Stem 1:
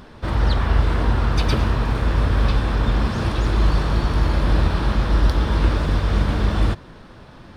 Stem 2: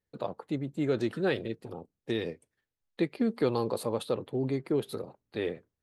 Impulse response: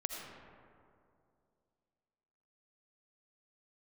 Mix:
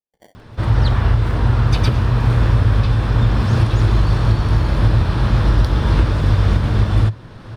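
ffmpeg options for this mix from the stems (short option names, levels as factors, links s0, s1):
-filter_complex "[0:a]equalizer=f=110:w=3.1:g=13.5,dynaudnorm=f=260:g=3:m=2.24,adelay=350,volume=1[s0];[1:a]highpass=f=650:w=0.5412,highpass=f=650:w=1.3066,acrusher=samples=34:mix=1:aa=0.000001,volume=0.266,asplit=2[s1][s2];[s2]volume=0.1[s3];[2:a]atrim=start_sample=2205[s4];[s3][s4]afir=irnorm=-1:irlink=0[s5];[s0][s1][s5]amix=inputs=3:normalize=0,alimiter=limit=0.596:level=0:latency=1:release=362"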